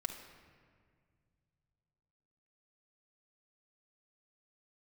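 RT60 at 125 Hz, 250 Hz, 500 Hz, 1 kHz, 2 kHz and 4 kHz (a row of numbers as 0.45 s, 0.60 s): 3.7 s, 2.6 s, 2.1 s, 1.8 s, 1.7 s, 1.2 s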